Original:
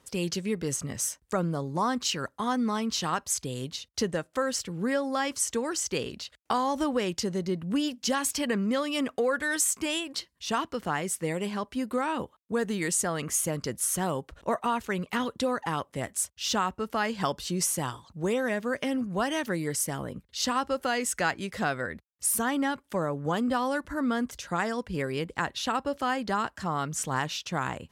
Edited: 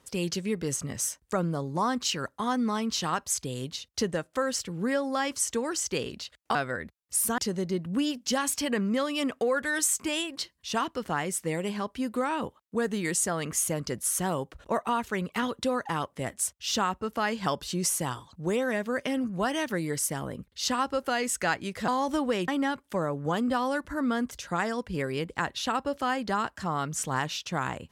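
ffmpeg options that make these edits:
-filter_complex "[0:a]asplit=5[a][b][c][d][e];[a]atrim=end=6.552[f];[b]atrim=start=21.648:end=22.482[g];[c]atrim=start=7.148:end=21.652[h];[d]atrim=start=6.548:end=7.152[i];[e]atrim=start=22.478[j];[f][g]acrossfade=d=0.004:c1=hsin:c2=hsin[k];[k][h]acrossfade=d=0.004:c1=hsin:c2=hsin[l];[l][i]acrossfade=d=0.004:c1=hsin:c2=hsin[m];[m][j]acrossfade=d=0.004:c1=hsin:c2=hsin"

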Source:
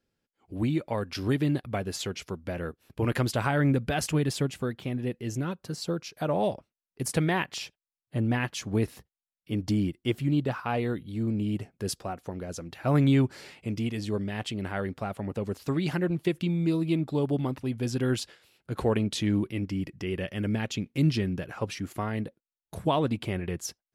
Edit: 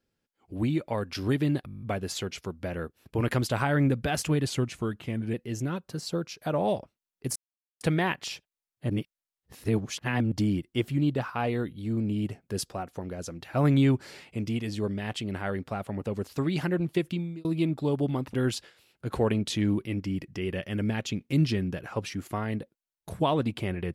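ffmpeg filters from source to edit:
-filter_complex "[0:a]asplit=16[a][b][c][d][e][f][g][h][i][j][k][l][m][n][o][p];[a]atrim=end=1.682[q];[b]atrim=start=1.658:end=1.682[r];[c]atrim=start=1.658:end=1.682[s];[d]atrim=start=1.658:end=1.682[t];[e]atrim=start=1.658:end=1.682[u];[f]atrim=start=1.658:end=1.682[v];[g]atrim=start=1.658:end=1.682[w];[h]atrim=start=1.658:end=1.682[x];[i]atrim=start=1.658:end=4.304[y];[j]atrim=start=4.3:end=5.09,asetpts=PTS-STARTPTS,asetrate=39690,aresample=44100[z];[k]atrim=start=5.086:end=7.11,asetpts=PTS-STARTPTS,afade=t=out:st=2.02:d=0.004:c=hsin,apad=pad_dur=0.45[aa];[l]atrim=start=7.11:end=8.202,asetpts=PTS-STARTPTS,afade=t=in:d=0.004:c=hsin[ab];[m]atrim=start=8.198:end=9.622,asetpts=PTS-STARTPTS,areverse[ac];[n]atrim=start=9.618:end=16.75,asetpts=PTS-STARTPTS,afade=t=out:st=6.742:d=0.39[ad];[o]atrim=start=16.75:end=17.642,asetpts=PTS-STARTPTS,afade=t=in:d=0.004:c=hsin[ae];[p]atrim=start=17.988[af];[q][r]acrossfade=d=0.004:c1=hsin:c2=hsin[ag];[ag][s]acrossfade=d=0.004:c1=hsin:c2=hsin[ah];[ah][t]acrossfade=d=0.004:c1=hsin:c2=hsin[ai];[ai][u]acrossfade=d=0.004:c1=hsin:c2=hsin[aj];[aj][v]acrossfade=d=0.004:c1=hsin:c2=hsin[ak];[ak][w]acrossfade=d=0.004:c1=hsin:c2=hsin[al];[al][x]acrossfade=d=0.004:c1=hsin:c2=hsin[am];[am][y]acrossfade=d=0.004:c1=hsin:c2=hsin[an];[an][z]acrossfade=d=0.004:c1=hsin:c2=hsin[ao];[aa][ab]concat=n=2:v=0:a=1[ap];[ao][ap]acrossfade=d=0.004:c1=hsin:c2=hsin[aq];[aq][ac]acrossfade=d=0.004:c1=hsin:c2=hsin[ar];[ad][ae]concat=n=2:v=0:a=1[as];[ar][as]acrossfade=d=0.004:c1=hsin:c2=hsin[at];[at][af]acrossfade=d=0.004:c1=hsin:c2=hsin"

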